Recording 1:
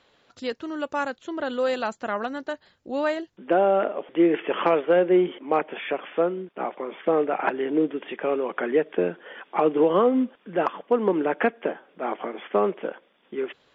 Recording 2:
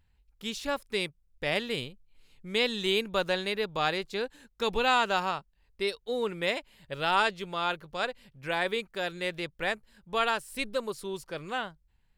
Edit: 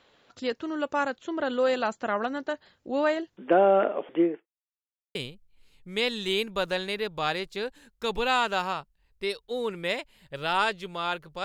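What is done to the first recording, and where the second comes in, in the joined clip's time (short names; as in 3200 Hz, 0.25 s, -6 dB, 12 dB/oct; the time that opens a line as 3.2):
recording 1
4.05–4.47 studio fade out
4.47–5.15 mute
5.15 switch to recording 2 from 1.73 s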